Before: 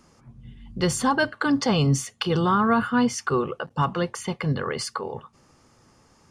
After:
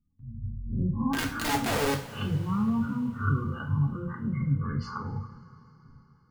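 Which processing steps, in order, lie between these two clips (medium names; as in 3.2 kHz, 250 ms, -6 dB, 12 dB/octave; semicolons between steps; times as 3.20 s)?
reverse spectral sustain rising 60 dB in 0.41 s; RIAA curve playback; low-pass that closes with the level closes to 770 Hz, closed at -10.5 dBFS; spectral gate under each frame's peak -20 dB strong; gate with hold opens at -37 dBFS; high-order bell 510 Hz -14.5 dB 1.3 oct; compression 16:1, threshold -17 dBFS, peak gain reduction 11.5 dB; 1.13–2.07 s: integer overflow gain 17.5 dB; flange 0.7 Hz, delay 6.2 ms, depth 5.8 ms, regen +75%; two-slope reverb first 0.4 s, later 4.3 s, from -21 dB, DRR 1.5 dB; trim -3.5 dB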